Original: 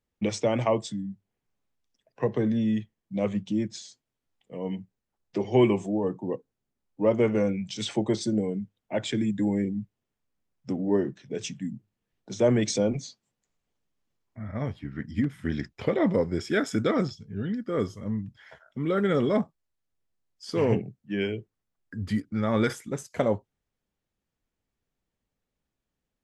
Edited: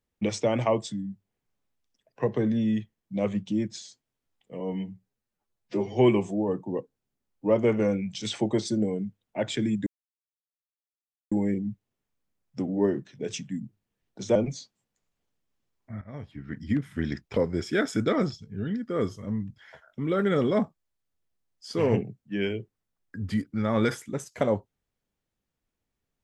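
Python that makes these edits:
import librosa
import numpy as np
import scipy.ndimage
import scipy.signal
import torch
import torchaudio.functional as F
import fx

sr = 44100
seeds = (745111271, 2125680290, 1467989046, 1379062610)

y = fx.edit(x, sr, fx.stretch_span(start_s=4.6, length_s=0.89, factor=1.5),
    fx.insert_silence(at_s=9.42, length_s=1.45),
    fx.cut(start_s=12.46, length_s=0.37),
    fx.fade_in_from(start_s=14.49, length_s=0.64, floor_db=-15.5),
    fx.cut(start_s=15.84, length_s=0.31), tone=tone)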